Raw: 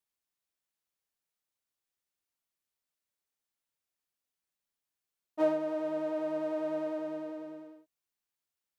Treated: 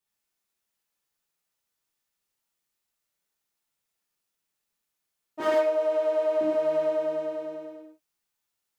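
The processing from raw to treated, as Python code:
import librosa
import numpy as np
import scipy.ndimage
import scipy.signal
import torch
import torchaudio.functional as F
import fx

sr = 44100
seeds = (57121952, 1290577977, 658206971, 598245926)

y = np.minimum(x, 2.0 * 10.0 ** (-26.0 / 20.0) - x)
y = fx.highpass(y, sr, hz=320.0, slope=24, at=(5.4, 6.41))
y = fx.rev_gated(y, sr, seeds[0], gate_ms=160, shape='flat', drr_db=-6.0)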